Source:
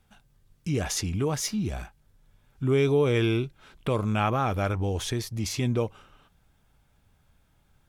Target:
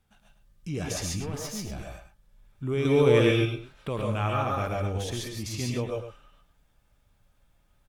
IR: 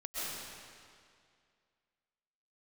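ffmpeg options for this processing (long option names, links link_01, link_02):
-filter_complex "[0:a]asettb=1/sr,asplit=3[link_01][link_02][link_03];[link_01]atrim=end=1.204[link_04];[link_02]atrim=start=1.2:end=1.69,asetpts=PTS-STARTPTS,afade=type=in:duration=0.004:curve=qsin,afade=type=out:start_time=0.486:duration=0.004:curve=qsin,aeval=exprs='(tanh(20*val(0)+0.55)-tanh(0.55))/20':channel_layout=same[link_05];[link_03]atrim=start=1.686[link_06];[link_04][link_05]acrossfade=duration=0.004:curve1=hsin:curve2=qsin[link_07];[link_07][link_06]acrossfade=duration=0.004:curve1=qsin:curve2=hsin,asettb=1/sr,asplit=3[link_08][link_09][link_10];[link_08]atrim=end=2.854[link_11];[link_09]atrim=start=2.85:end=3.31,asetpts=PTS-STARTPTS,afade=type=in:duration=0.004:curve=qsin,afade=type=out:start_time=0.456:duration=0.004:curve=qsin,acontrast=76[link_12];[link_10]atrim=start=3.306[link_13];[link_11][link_12]acrossfade=duration=0.004:curve1=hsin:curve2=qsin[link_14];[link_14][link_13]acrossfade=duration=0.004:curve1=qsin:curve2=hsin,asplit=2[link_15][link_16];[link_16]adelay=105,volume=-9dB,highshelf=frequency=4000:gain=-2.36[link_17];[link_15][link_17]amix=inputs=2:normalize=0[link_18];[1:a]atrim=start_sample=2205,atrim=end_sample=6174,asetrate=41454,aresample=44100[link_19];[link_18][link_19]afir=irnorm=-1:irlink=0"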